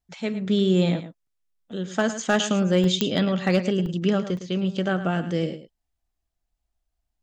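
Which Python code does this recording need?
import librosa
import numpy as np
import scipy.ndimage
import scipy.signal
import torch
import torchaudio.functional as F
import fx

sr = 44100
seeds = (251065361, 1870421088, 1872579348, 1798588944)

y = fx.fix_declip(x, sr, threshold_db=-10.5)
y = fx.fix_declick_ar(y, sr, threshold=10.0)
y = fx.fix_interpolate(y, sr, at_s=(1.27, 2.84, 3.86, 4.37), length_ms=1.9)
y = fx.fix_echo_inverse(y, sr, delay_ms=109, level_db=-12.0)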